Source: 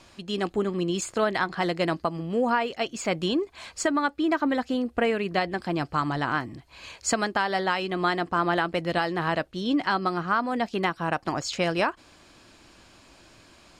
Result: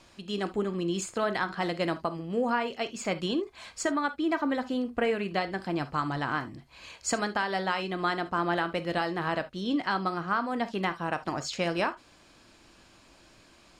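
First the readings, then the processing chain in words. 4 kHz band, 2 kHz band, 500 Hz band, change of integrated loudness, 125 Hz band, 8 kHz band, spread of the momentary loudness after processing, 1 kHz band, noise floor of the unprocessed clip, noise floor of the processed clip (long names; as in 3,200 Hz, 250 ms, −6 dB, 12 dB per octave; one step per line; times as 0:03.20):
−3.5 dB, −3.5 dB, −3.5 dB, −3.5 dB, −3.5 dB, −3.5 dB, 5 LU, −3.5 dB, −55 dBFS, −58 dBFS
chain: reverb whose tail is shaped and stops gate 90 ms flat, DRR 10.5 dB
level −4 dB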